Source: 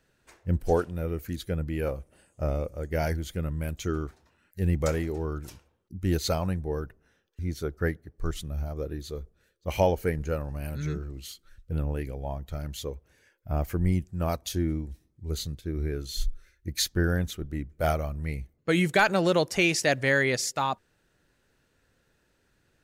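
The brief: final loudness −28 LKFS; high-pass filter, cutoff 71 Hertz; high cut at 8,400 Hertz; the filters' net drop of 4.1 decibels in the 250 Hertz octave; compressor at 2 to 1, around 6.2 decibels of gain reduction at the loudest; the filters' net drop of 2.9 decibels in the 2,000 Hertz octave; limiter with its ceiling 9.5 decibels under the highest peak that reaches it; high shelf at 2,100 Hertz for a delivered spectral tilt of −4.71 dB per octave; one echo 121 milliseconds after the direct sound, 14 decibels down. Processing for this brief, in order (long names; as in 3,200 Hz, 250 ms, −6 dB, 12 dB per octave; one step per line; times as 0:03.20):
high-pass filter 71 Hz
low-pass filter 8,400 Hz
parametric band 250 Hz −7 dB
parametric band 2,000 Hz −7 dB
high-shelf EQ 2,100 Hz +6 dB
downward compressor 2 to 1, threshold −30 dBFS
brickwall limiter −26 dBFS
single-tap delay 121 ms −14 dB
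level +9 dB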